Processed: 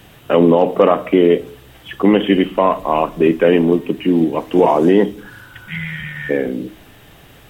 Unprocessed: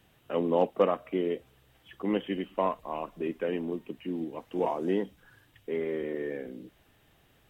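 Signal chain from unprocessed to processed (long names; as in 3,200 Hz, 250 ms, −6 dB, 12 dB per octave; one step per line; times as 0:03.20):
healed spectral selection 0:05.36–0:06.28, 200–1,600 Hz before
convolution reverb RT60 0.45 s, pre-delay 7 ms, DRR 15.5 dB
boost into a limiter +20.5 dB
level −1 dB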